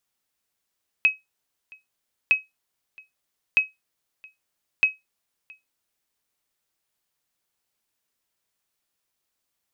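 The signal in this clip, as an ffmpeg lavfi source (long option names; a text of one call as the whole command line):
ffmpeg -f lavfi -i "aevalsrc='0.335*(sin(2*PI*2550*mod(t,1.26))*exp(-6.91*mod(t,1.26)/0.18)+0.0422*sin(2*PI*2550*max(mod(t,1.26)-0.67,0))*exp(-6.91*max(mod(t,1.26)-0.67,0)/0.18))':duration=5.04:sample_rate=44100" out.wav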